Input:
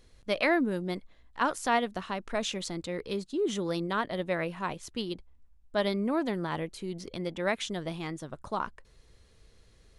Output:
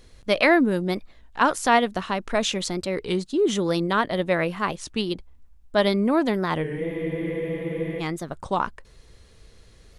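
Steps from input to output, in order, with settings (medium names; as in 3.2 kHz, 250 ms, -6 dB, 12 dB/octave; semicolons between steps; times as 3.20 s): spectral freeze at 6.66 s, 1.33 s; warped record 33 1/3 rpm, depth 160 cents; trim +8 dB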